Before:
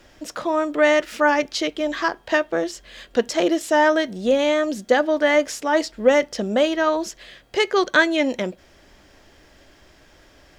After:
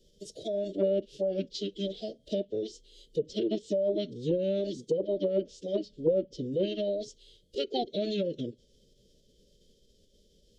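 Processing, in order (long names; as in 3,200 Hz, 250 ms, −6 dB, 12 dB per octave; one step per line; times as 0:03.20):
elliptic band-stop filter 690–3,300 Hz, stop band 70 dB
treble cut that deepens with the level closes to 1,200 Hz, closed at −14.5 dBFS
phase-vocoder pitch shift with formants kept −7.5 semitones
level −8.5 dB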